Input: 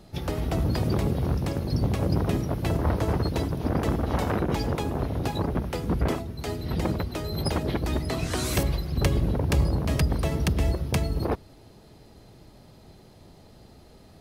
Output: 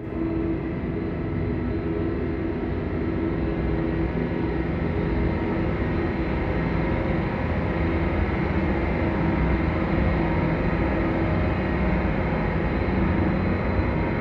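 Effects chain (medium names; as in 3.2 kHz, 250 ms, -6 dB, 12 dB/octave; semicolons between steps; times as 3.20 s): LFO low-pass square 1.2 Hz 350–2100 Hz; Paulstretch 24×, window 1.00 s, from 6.43 s; Schroeder reverb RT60 2 s, combs from 33 ms, DRR -8 dB; trim -4.5 dB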